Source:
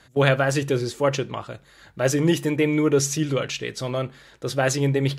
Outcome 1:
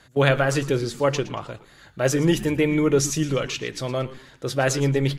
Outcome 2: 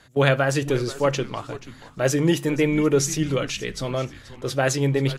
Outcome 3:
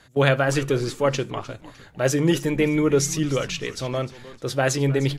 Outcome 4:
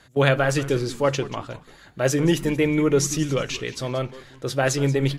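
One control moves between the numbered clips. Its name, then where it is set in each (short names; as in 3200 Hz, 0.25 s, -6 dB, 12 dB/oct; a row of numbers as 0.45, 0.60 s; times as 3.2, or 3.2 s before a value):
frequency-shifting echo, time: 0.115, 0.482, 0.304, 0.182 s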